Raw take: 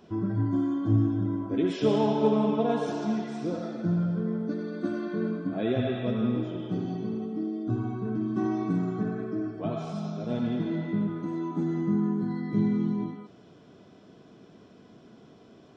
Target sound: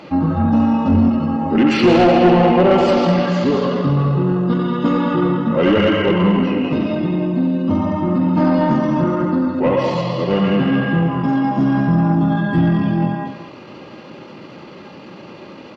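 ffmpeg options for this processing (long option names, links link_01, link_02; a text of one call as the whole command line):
ffmpeg -i in.wav -filter_complex "[0:a]bandreject=frequency=60:width_type=h:width=6,bandreject=frequency=120:width_type=h:width=6,bandreject=frequency=180:width_type=h:width=6,aecho=1:1:209:0.376,asetrate=36028,aresample=44100,atempo=1.22405,asplit=2[link_01][link_02];[link_02]highpass=frequency=720:poles=1,volume=21dB,asoftclip=type=tanh:threshold=-11.5dB[link_03];[link_01][link_03]amix=inputs=2:normalize=0,lowpass=frequency=3200:poles=1,volume=-6dB,volume=8.5dB" out.wav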